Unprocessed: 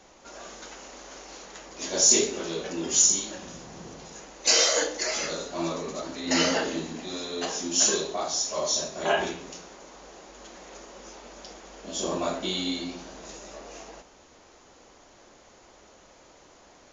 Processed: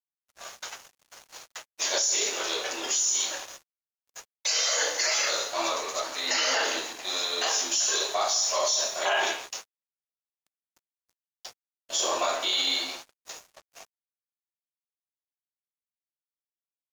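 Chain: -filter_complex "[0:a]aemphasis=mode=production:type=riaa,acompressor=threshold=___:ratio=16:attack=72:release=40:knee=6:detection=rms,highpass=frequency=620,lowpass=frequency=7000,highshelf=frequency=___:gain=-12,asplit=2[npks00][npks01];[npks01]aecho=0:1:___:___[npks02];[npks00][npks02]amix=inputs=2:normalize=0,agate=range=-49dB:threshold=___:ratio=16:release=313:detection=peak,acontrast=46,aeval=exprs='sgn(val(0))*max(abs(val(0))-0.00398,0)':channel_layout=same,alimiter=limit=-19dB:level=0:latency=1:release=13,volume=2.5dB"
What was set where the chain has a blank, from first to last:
-22dB, 4700, 168, 0.15, -43dB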